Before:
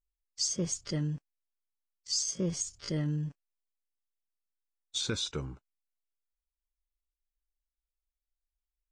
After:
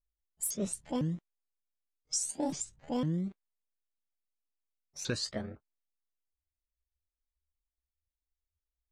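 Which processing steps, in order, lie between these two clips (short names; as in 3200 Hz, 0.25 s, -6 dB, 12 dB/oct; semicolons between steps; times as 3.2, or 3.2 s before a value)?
repeated pitch sweeps +9.5 st, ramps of 0.505 s; low-pass opened by the level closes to 490 Hz, open at -28.5 dBFS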